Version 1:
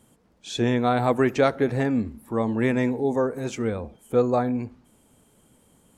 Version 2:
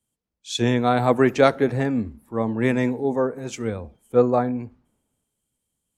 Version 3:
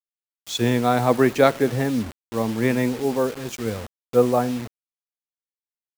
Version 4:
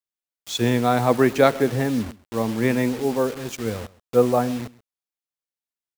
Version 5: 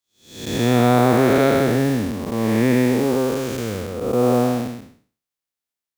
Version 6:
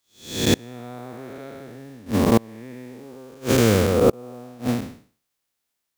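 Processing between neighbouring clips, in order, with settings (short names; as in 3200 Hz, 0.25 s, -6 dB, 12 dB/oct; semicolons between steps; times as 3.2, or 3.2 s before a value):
three-band expander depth 70%; gain +1.5 dB
bit-crush 6-bit
echo 0.131 s -21 dB
time blur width 0.333 s; gain +6.5 dB
flipped gate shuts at -13 dBFS, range -31 dB; gain +9 dB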